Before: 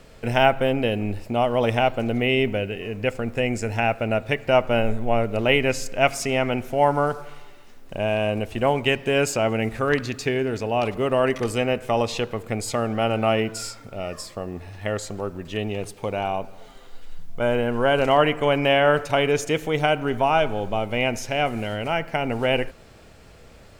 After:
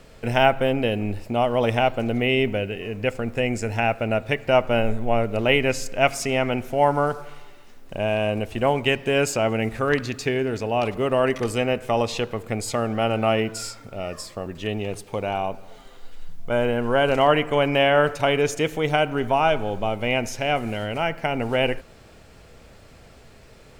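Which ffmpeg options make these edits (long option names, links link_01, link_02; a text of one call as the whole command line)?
ffmpeg -i in.wav -filter_complex "[0:a]asplit=2[link_01][link_02];[link_01]atrim=end=14.462[link_03];[link_02]atrim=start=15.358[link_04];[link_03][link_04]acrossfade=duration=0.004:curve1=hsin:curve2=hsin" out.wav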